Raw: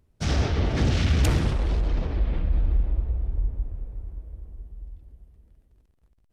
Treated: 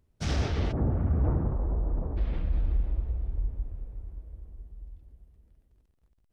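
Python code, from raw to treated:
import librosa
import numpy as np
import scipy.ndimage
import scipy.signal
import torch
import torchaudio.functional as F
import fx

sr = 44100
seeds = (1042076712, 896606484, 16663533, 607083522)

y = fx.lowpass(x, sr, hz=1100.0, slope=24, at=(0.71, 2.16), fade=0.02)
y = y * 10.0 ** (-4.5 / 20.0)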